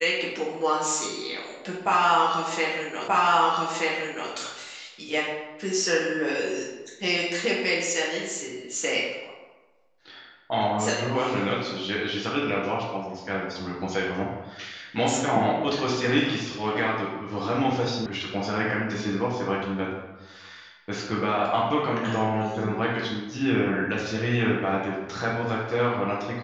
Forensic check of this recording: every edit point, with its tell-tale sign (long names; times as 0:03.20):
0:03.08: the same again, the last 1.23 s
0:18.06: cut off before it has died away